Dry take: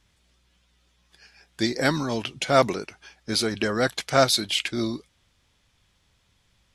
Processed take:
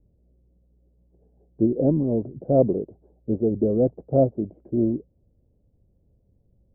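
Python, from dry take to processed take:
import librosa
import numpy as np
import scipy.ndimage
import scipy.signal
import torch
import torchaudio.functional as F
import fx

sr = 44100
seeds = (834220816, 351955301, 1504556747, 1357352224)

y = scipy.signal.sosfilt(scipy.signal.butter(6, 570.0, 'lowpass', fs=sr, output='sos'), x)
y = y * 10.0 ** (5.5 / 20.0)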